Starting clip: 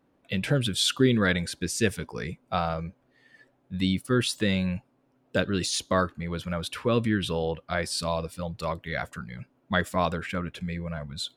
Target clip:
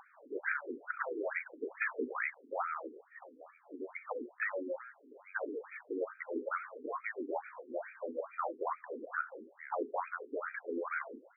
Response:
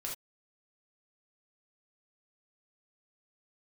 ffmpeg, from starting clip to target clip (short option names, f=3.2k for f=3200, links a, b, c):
-filter_complex "[0:a]acrossover=split=130|280|4000[a][b][c][d];[a]acompressor=threshold=-38dB:ratio=4[e];[b]acompressor=threshold=-33dB:ratio=4[f];[c]acompressor=threshold=-37dB:ratio=4[g];[d]acompressor=threshold=-42dB:ratio=4[h];[e][f][g][h]amix=inputs=4:normalize=0,aeval=exprs='(mod(9.44*val(0)+1,2)-1)/9.44':c=same,asplit=2[i][j];[1:a]atrim=start_sample=2205[k];[j][k]afir=irnorm=-1:irlink=0,volume=-11dB[l];[i][l]amix=inputs=2:normalize=0,afftfilt=real='re*lt(hypot(re,im),0.1)':imag='im*lt(hypot(re,im),0.1)':win_size=1024:overlap=0.75,aeval=exprs='0.237*(cos(1*acos(clip(val(0)/0.237,-1,1)))-cos(1*PI/2))+0.0106*(cos(4*acos(clip(val(0)/0.237,-1,1)))-cos(4*PI/2))+0.106*(cos(5*acos(clip(val(0)/0.237,-1,1)))-cos(5*PI/2))+0.0299*(cos(8*acos(clip(val(0)/0.237,-1,1)))-cos(8*PI/2))':c=same,asoftclip=type=tanh:threshold=-19.5dB,aecho=1:1:704:0.141,acompressor=mode=upward:threshold=-41dB:ratio=2.5,highshelf=f=4.7k:g=3,afftfilt=real='re*between(b*sr/1024,320*pow(1800/320,0.5+0.5*sin(2*PI*2.3*pts/sr))/1.41,320*pow(1800/320,0.5+0.5*sin(2*PI*2.3*pts/sr))*1.41)':imag='im*between(b*sr/1024,320*pow(1800/320,0.5+0.5*sin(2*PI*2.3*pts/sr))/1.41,320*pow(1800/320,0.5+0.5*sin(2*PI*2.3*pts/sr))*1.41)':win_size=1024:overlap=0.75,volume=-1dB"